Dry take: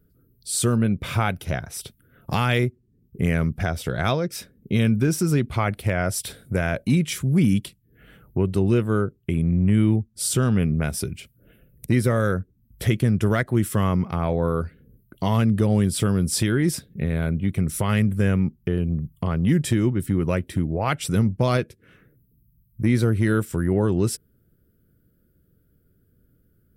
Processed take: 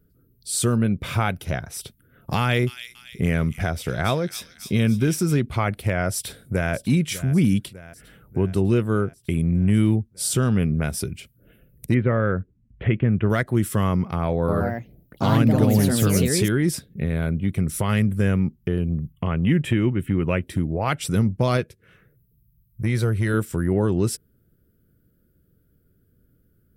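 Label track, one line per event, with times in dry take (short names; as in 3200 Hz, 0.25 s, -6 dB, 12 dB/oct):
2.390000	5.370000	thin delay 0.28 s, feedback 48%, high-pass 3500 Hz, level -4 dB
6.130000	6.730000	echo throw 0.6 s, feedback 65%, level -15 dB
9.210000	9.950000	high shelf 4100 Hz +7 dB
11.940000	13.300000	steep low-pass 2900 Hz 48 dB/oct
14.360000	16.740000	echoes that change speed 0.123 s, each echo +3 st, echoes 2
19.120000	20.420000	resonant high shelf 3600 Hz -9 dB, Q 3
21.610000	23.340000	bell 270 Hz -11.5 dB 0.51 oct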